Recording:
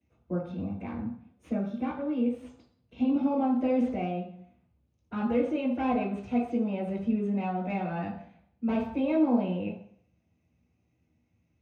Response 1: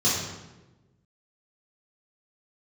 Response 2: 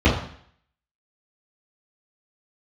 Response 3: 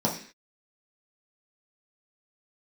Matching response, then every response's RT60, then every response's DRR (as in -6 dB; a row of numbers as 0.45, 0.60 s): 2; 1.1, 0.60, 0.45 s; -9.5, -11.5, -4.0 dB